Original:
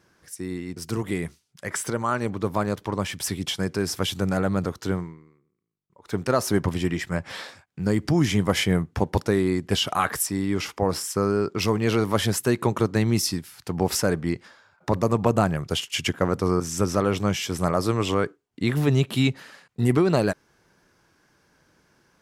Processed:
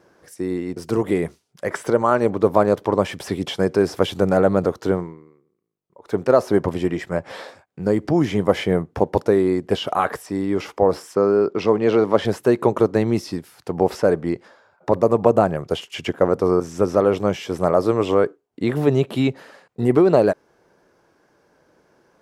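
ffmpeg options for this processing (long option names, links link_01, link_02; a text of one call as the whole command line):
ffmpeg -i in.wav -filter_complex "[0:a]asettb=1/sr,asplit=3[link_01][link_02][link_03];[link_01]atrim=end=11.154[link_04];[link_02]atrim=start=11.15:end=12.25,asetpts=PTS-STARTPTS,afade=type=in:duration=0.004:curve=qsin,afade=type=out:start_time=1.096:duration=0.004:curve=qsin,highpass=120,lowpass=5800[link_05];[link_03]atrim=start=12.246[link_06];[link_04][link_05]acrossfade=duration=0.004:curve1=hsin:curve2=qsin[link_07];[link_07][link_06]acrossfade=duration=0.004:curve1=qsin:curve2=hsin,acrossover=split=4400[link_08][link_09];[link_09]acompressor=threshold=-38dB:ratio=4:attack=1:release=60[link_10];[link_08][link_10]amix=inputs=2:normalize=0,equalizer=frequency=530:width=0.61:gain=13.5,dynaudnorm=framelen=900:gausssize=5:maxgain=11.5dB,volume=-1dB" out.wav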